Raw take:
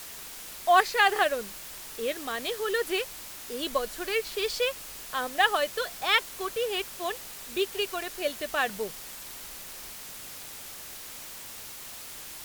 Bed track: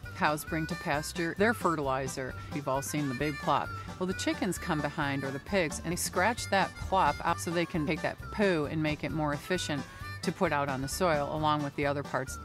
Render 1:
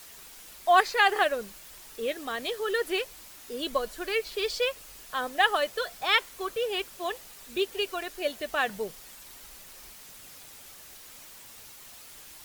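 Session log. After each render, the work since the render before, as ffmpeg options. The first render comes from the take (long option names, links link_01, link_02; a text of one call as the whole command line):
ffmpeg -i in.wav -af "afftdn=noise_reduction=7:noise_floor=-43" out.wav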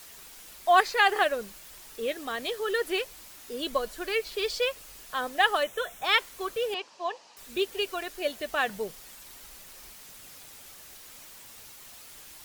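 ffmpeg -i in.wav -filter_complex "[0:a]asettb=1/sr,asplit=3[link_01][link_02][link_03];[link_01]atrim=end=5.634[link_04];[link_02]atrim=start=5.63:end=6.04,asetpts=PTS-STARTPTS,afade=type=in:duration=0.004:curve=qsin,afade=type=out:start_time=0.406:duration=0.004:curve=qsin,asuperstop=centerf=4600:order=4:qfactor=2.5[link_05];[link_03]atrim=start=6.036[link_06];[link_04][link_05]acrossfade=duration=0.004:curve1=hsin:curve2=qsin[link_07];[link_07][link_06]acrossfade=duration=0.004:curve1=qsin:curve2=hsin,asettb=1/sr,asplit=3[link_08][link_09][link_10];[link_08]atrim=end=6.744[link_11];[link_09]atrim=start=6.74:end=7.37,asetpts=PTS-STARTPTS,afade=type=in:duration=0.004:curve=qsin,afade=type=out:start_time=0.626:duration=0.004:curve=qsin,highpass=330,equalizer=frequency=380:width_type=q:width=4:gain=-5,equalizer=frequency=940:width_type=q:width=4:gain=8,equalizer=frequency=1400:width_type=q:width=4:gain=-7,equalizer=frequency=2100:width_type=q:width=4:gain=-7,equalizer=frequency=3500:width_type=q:width=4:gain=-7,lowpass=frequency=5700:width=0.5412,lowpass=frequency=5700:width=1.3066[link_12];[link_10]atrim=start=7.366[link_13];[link_11][link_12]acrossfade=duration=0.004:curve1=hsin:curve2=qsin[link_14];[link_14][link_13]acrossfade=duration=0.004:curve1=qsin:curve2=hsin" out.wav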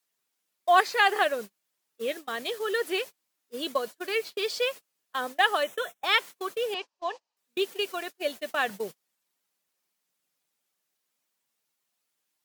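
ffmpeg -i in.wav -af "highpass=frequency=140:width=0.5412,highpass=frequency=140:width=1.3066,agate=range=-32dB:threshold=-36dB:ratio=16:detection=peak" out.wav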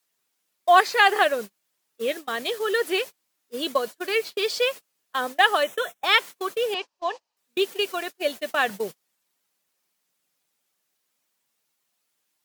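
ffmpeg -i in.wav -af "volume=4.5dB,alimiter=limit=-3dB:level=0:latency=1" out.wav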